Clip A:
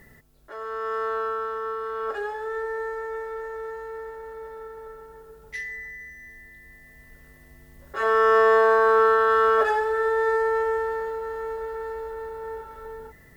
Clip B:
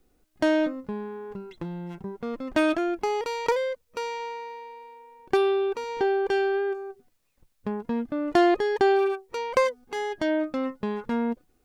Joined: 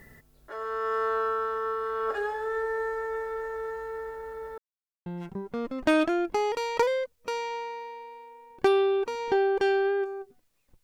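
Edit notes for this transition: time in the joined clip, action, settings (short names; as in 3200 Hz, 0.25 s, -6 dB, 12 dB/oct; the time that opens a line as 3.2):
clip A
4.58–5.06 mute
5.06 switch to clip B from 1.75 s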